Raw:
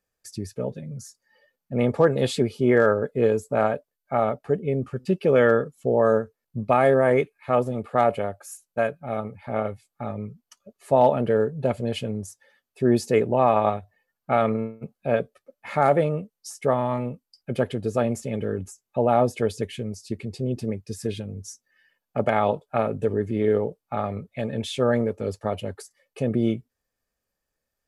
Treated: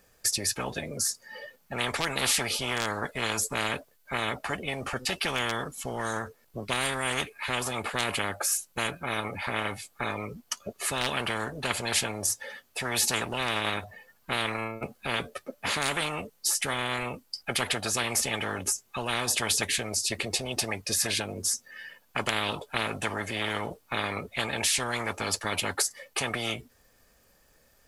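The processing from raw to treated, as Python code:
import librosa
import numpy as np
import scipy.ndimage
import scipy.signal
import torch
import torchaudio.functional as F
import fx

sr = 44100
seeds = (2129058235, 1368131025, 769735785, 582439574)

y = fx.spectral_comp(x, sr, ratio=10.0)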